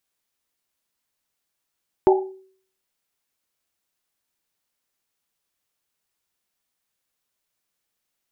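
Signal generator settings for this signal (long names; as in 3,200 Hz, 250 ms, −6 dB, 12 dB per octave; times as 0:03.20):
drum after Risset, pitch 380 Hz, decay 0.54 s, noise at 810 Hz, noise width 100 Hz, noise 45%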